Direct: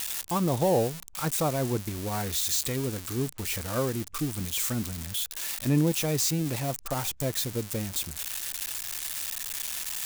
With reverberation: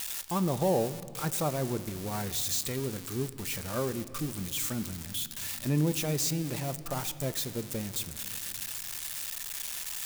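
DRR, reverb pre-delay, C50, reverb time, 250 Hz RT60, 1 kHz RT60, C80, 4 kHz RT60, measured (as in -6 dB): 12.0 dB, 5 ms, 14.5 dB, 2.4 s, 3.7 s, 2.2 s, 15.5 dB, 1.8 s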